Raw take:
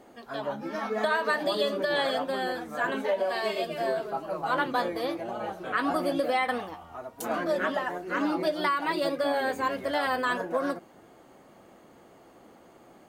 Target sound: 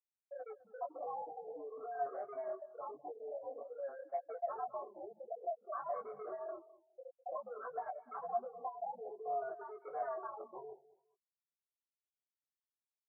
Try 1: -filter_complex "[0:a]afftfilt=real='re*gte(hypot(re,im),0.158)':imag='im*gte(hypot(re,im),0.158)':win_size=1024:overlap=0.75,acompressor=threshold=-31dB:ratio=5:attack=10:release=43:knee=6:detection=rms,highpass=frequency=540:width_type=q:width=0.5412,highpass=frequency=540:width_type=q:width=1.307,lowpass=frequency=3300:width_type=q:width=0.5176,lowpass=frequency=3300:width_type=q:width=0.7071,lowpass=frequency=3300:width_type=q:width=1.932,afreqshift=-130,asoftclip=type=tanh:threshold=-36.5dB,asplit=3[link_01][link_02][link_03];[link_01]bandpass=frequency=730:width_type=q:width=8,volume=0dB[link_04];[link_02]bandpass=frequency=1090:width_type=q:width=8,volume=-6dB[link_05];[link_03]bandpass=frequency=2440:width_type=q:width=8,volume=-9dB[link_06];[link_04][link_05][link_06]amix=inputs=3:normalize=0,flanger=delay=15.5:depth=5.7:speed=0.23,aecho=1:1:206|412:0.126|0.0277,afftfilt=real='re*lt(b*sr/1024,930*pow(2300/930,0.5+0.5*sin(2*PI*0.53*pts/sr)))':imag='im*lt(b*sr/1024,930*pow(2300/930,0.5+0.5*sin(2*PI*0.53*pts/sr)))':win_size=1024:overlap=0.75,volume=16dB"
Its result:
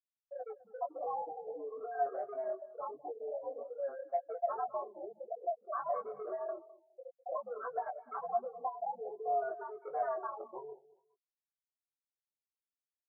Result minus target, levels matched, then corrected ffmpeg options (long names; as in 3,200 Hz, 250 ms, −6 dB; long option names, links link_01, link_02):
soft clipping: distortion −4 dB
-filter_complex "[0:a]afftfilt=real='re*gte(hypot(re,im),0.158)':imag='im*gte(hypot(re,im),0.158)':win_size=1024:overlap=0.75,acompressor=threshold=-31dB:ratio=5:attack=10:release=43:knee=6:detection=rms,highpass=frequency=540:width_type=q:width=0.5412,highpass=frequency=540:width_type=q:width=1.307,lowpass=frequency=3300:width_type=q:width=0.5176,lowpass=frequency=3300:width_type=q:width=0.7071,lowpass=frequency=3300:width_type=q:width=1.932,afreqshift=-130,asoftclip=type=tanh:threshold=-42.5dB,asplit=3[link_01][link_02][link_03];[link_01]bandpass=frequency=730:width_type=q:width=8,volume=0dB[link_04];[link_02]bandpass=frequency=1090:width_type=q:width=8,volume=-6dB[link_05];[link_03]bandpass=frequency=2440:width_type=q:width=8,volume=-9dB[link_06];[link_04][link_05][link_06]amix=inputs=3:normalize=0,flanger=delay=15.5:depth=5.7:speed=0.23,aecho=1:1:206|412:0.126|0.0277,afftfilt=real='re*lt(b*sr/1024,930*pow(2300/930,0.5+0.5*sin(2*PI*0.53*pts/sr)))':imag='im*lt(b*sr/1024,930*pow(2300/930,0.5+0.5*sin(2*PI*0.53*pts/sr)))':win_size=1024:overlap=0.75,volume=16dB"